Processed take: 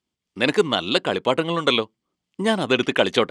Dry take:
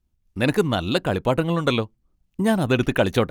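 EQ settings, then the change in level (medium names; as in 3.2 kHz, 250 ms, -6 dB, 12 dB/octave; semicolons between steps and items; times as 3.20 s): cabinet simulation 230–9300 Hz, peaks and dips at 420 Hz +3 dB, 1.1 kHz +4 dB, 2.1 kHz +6 dB, 3.2 kHz +9 dB, 4.8 kHz +6 dB, 7.7 kHz +4 dB; 0.0 dB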